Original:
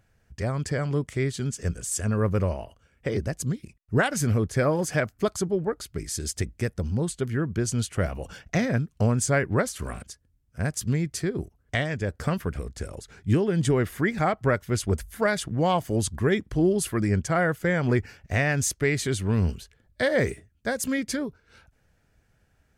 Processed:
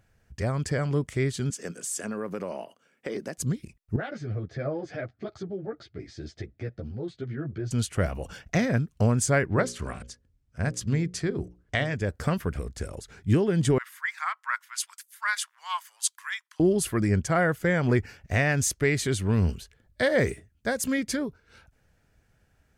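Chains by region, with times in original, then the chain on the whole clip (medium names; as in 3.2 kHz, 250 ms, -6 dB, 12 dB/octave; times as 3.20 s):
1.50–3.38 s: high-pass 200 Hz 24 dB/octave + compression 4:1, threshold -28 dBFS
3.96–7.71 s: compression 2.5:1, threshold -29 dBFS + cabinet simulation 110–4000 Hz, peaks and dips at 120 Hz +9 dB, 200 Hz -5 dB, 340 Hz +4 dB, 670 Hz +6 dB, 1 kHz -10 dB, 2.8 kHz -7 dB + three-phase chorus
9.45–11.95 s: low-pass 7.3 kHz + hum notches 60/120/180/240/300/360/420/480/540 Hz
13.78–16.60 s: Chebyshev high-pass 980 Hz, order 5 + three bands expanded up and down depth 70%
whole clip: none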